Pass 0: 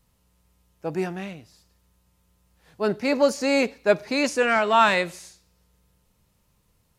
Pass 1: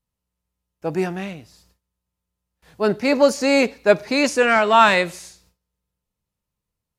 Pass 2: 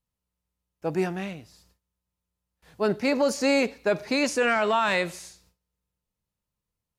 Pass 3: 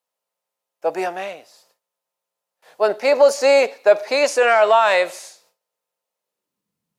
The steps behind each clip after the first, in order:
gate with hold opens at -51 dBFS; trim +4.5 dB
peak limiter -11 dBFS, peak gain reduction 10 dB; trim -3.5 dB
high-pass sweep 600 Hz -> 180 Hz, 6.20–6.73 s; trim +5 dB

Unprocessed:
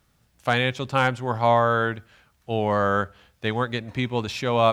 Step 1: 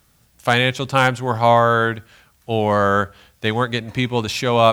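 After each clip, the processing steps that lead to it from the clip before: treble shelf 5.9 kHz +8.5 dB; trim +5 dB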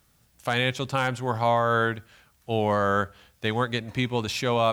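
peak limiter -6.5 dBFS, peak gain reduction 5 dB; trim -5.5 dB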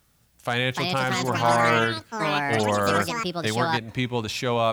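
ever faster or slower copies 438 ms, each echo +6 st, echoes 3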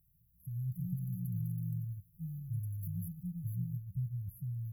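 rattle on loud lows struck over -39 dBFS, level -22 dBFS; FFT band-reject 190–11000 Hz; trim -5 dB

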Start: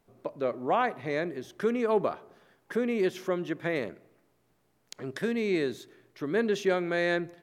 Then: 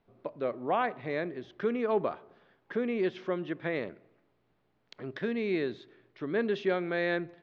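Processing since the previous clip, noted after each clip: low-pass 4.1 kHz 24 dB/octave; trim -2.5 dB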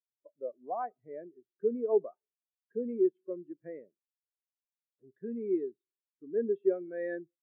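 spectral contrast expander 2.5:1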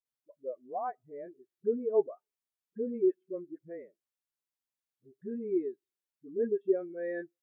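phase dispersion highs, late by 56 ms, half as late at 420 Hz

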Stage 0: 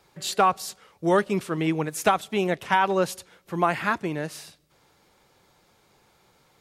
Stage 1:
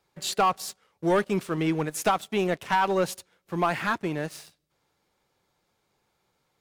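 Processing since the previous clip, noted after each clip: waveshaping leveller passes 2; trim -8 dB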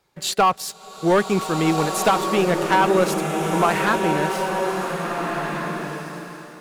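swelling reverb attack 1740 ms, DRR 2.5 dB; trim +5.5 dB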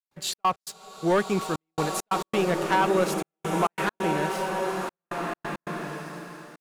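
trance gate ".xx.x.xxxxxxxx." 135 bpm -60 dB; trim -5 dB

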